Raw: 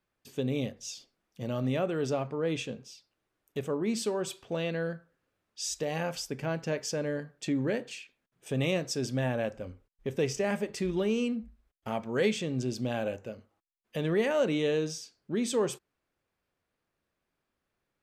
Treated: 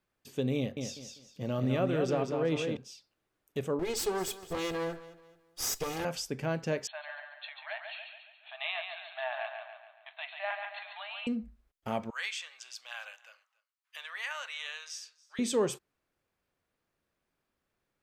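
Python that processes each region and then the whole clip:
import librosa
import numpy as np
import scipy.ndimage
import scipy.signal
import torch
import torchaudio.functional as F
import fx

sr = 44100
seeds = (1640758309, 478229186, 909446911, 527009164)

y = fx.chain(x, sr, fx.peak_eq(hz=8500.0, db=-4.5, octaves=1.5),
    fx.echo_feedback(ms=197, feedback_pct=27, wet_db=-5), at=(0.57, 2.77))
y = fx.chain(y, sr, fx.lower_of_two(delay_ms=2.4),
    fx.high_shelf(hz=4700.0, db=5.5),
    fx.echo_feedback(ms=215, feedback_pct=36, wet_db=-17), at=(3.79, 6.05))
y = fx.chain(y, sr, fx.brickwall_bandpass(low_hz=610.0, high_hz=4300.0),
    fx.echo_feedback(ms=140, feedback_pct=49, wet_db=-6.0), at=(6.87, 11.27))
y = fx.chain(y, sr, fx.cheby2_highpass(hz=320.0, order=4, stop_db=60),
    fx.high_shelf(hz=7800.0, db=-5.5),
    fx.echo_single(ms=282, db=-23.0), at=(12.1, 15.39))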